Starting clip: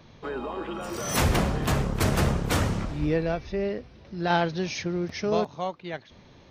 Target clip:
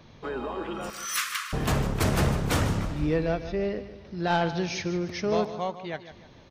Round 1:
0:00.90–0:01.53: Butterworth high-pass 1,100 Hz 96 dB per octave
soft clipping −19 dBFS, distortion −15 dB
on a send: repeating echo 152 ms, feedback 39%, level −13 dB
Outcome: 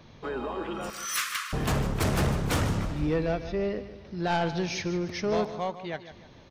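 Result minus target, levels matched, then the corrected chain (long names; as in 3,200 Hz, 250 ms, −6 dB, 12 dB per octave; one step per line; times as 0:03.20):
soft clipping: distortion +8 dB
0:00.90–0:01.53: Butterworth high-pass 1,100 Hz 96 dB per octave
soft clipping −12.5 dBFS, distortion −23 dB
on a send: repeating echo 152 ms, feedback 39%, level −13 dB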